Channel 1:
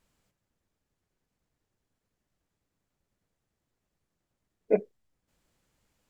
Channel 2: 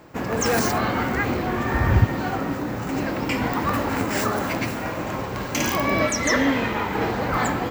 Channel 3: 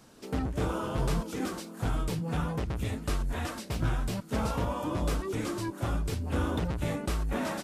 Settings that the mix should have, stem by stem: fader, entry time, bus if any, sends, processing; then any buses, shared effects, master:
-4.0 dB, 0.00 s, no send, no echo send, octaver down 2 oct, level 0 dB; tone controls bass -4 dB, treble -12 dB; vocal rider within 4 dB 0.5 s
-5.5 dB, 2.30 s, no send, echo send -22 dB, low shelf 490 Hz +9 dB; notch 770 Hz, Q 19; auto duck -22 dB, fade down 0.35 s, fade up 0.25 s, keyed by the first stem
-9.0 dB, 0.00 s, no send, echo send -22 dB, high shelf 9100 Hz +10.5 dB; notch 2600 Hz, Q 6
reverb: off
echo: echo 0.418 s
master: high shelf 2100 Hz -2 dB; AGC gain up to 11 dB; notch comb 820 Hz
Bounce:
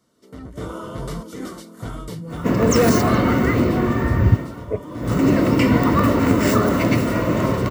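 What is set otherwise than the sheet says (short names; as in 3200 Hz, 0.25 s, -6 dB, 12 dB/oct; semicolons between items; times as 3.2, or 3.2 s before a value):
stem 3: missing high shelf 9100 Hz +10.5 dB; master: missing high shelf 2100 Hz -2 dB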